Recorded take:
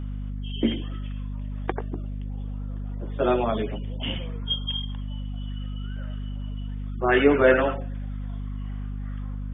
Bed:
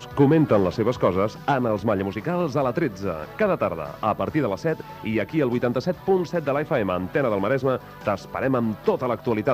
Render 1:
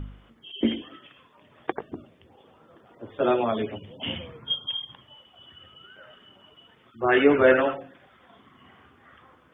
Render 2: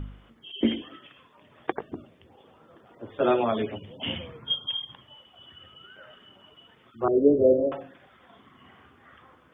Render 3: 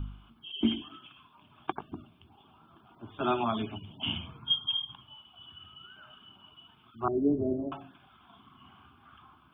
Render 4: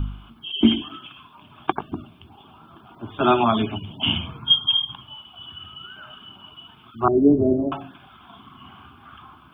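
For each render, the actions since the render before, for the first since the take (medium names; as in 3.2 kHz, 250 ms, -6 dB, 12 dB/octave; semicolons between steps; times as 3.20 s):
de-hum 50 Hz, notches 5
7.08–7.72 s: Chebyshev low-pass 590 Hz, order 5
static phaser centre 1.9 kHz, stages 6
trim +11 dB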